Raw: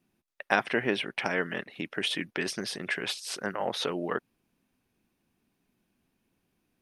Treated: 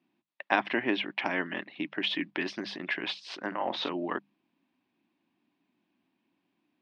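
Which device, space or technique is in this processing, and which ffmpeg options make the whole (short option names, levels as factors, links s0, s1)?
kitchen radio: -filter_complex "[0:a]asettb=1/sr,asplit=3[s0][s1][s2];[s0]atrim=end=3.474[s3];[s1]atrim=start=3.47:end=3.89,asetpts=PTS-STARTPTS,afade=t=in:d=0.004:c=qsin,afade=t=out:st=0.416:d=0.004:c=qsin,asplit=2[s4][s5];[s5]adelay=46,volume=0.282[s6];[s4][s6]amix=inputs=2:normalize=0,atrim=end_sample=18522[s7];[s2]atrim=start=3.886[s8];[s3][s7]acrossfade=d=0.004:c1=hsin:c2=qsin[s9];[s9][s8]acrossfade=d=0.004:c1=qsin:c2=hsin,highpass=210,equalizer=f=300:t=q:w=4:g=7,equalizer=f=460:t=q:w=4:g=-10,equalizer=f=980:t=q:w=4:g=4,equalizer=f=1400:t=q:w=4:g=-5,lowpass=f=4000:w=0.5412,lowpass=f=4000:w=1.3066,highshelf=f=8800:g=6.5,bandreject=f=50:t=h:w=6,bandreject=f=100:t=h:w=6,bandreject=f=150:t=h:w=6,bandreject=f=200:t=h:w=6"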